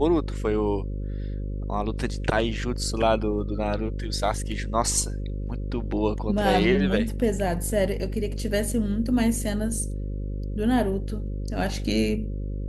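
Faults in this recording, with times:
buzz 50 Hz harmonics 11 -30 dBFS

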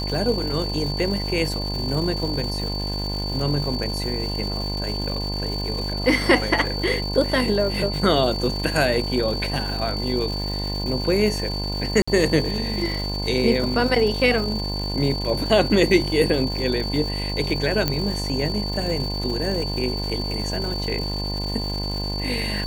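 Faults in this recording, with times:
buzz 50 Hz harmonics 21 -28 dBFS
crackle 450 per s -30 dBFS
whine 4.5 kHz -29 dBFS
12.02–12.07 s: dropout 55 ms
17.88 s: pop -6 dBFS

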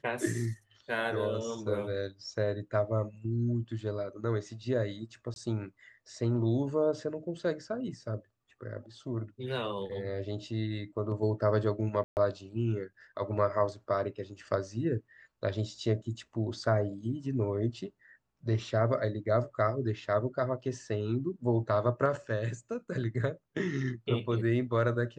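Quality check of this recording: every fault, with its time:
5.34–5.36 s: dropout 21 ms
12.04–12.17 s: dropout 129 ms

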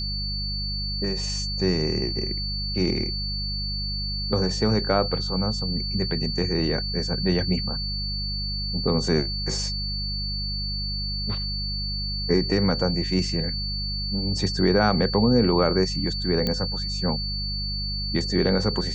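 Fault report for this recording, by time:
hum 50 Hz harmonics 4 -31 dBFS
whine 4.5 kHz -29 dBFS
16.47 s: pop -11 dBFS

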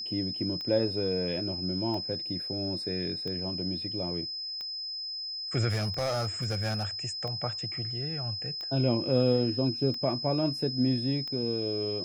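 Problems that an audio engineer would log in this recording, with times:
tick 45 rpm -26 dBFS
whine 5.1 kHz -34 dBFS
5.69–6.86 s: clipped -25.5 dBFS

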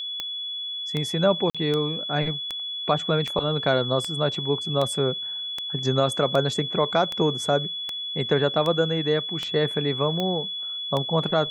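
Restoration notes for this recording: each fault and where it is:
tick 78 rpm -14 dBFS
whine 3.4 kHz -29 dBFS
1.50–1.55 s: dropout 46 ms

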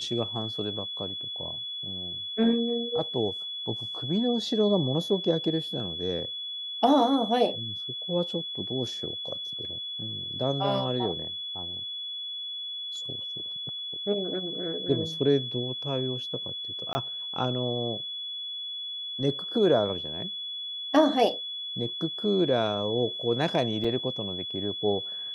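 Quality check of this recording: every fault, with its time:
whine 3.4 kHz -33 dBFS
16.93–16.95 s: dropout 20 ms
23.84 s: dropout 5 ms

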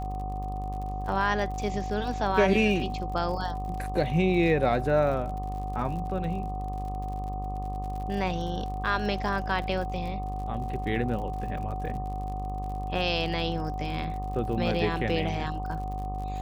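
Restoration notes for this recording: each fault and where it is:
buzz 50 Hz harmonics 25 -34 dBFS
crackle 55 per s -37 dBFS
whine 750 Hz -35 dBFS

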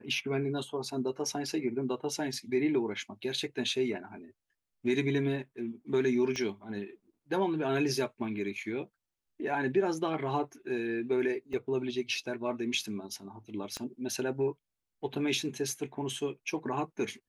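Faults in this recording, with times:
6.36 s: pop -23 dBFS
11.53 s: dropout 4.2 ms
13.77 s: pop -22 dBFS

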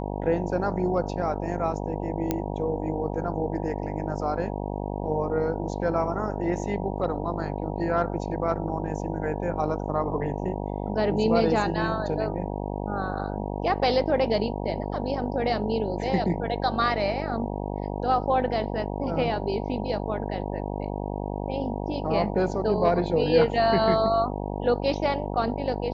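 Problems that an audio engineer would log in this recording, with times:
buzz 50 Hz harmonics 19 -31 dBFS
2.31 s: pop -11 dBFS

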